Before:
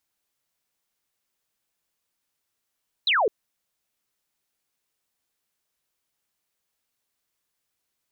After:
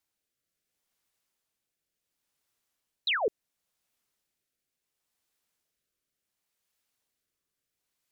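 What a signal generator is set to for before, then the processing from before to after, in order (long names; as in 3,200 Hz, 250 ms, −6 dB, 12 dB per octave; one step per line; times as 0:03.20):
single falling chirp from 4,200 Hz, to 380 Hz, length 0.21 s sine, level −18 dB
rotating-speaker cabinet horn 0.7 Hz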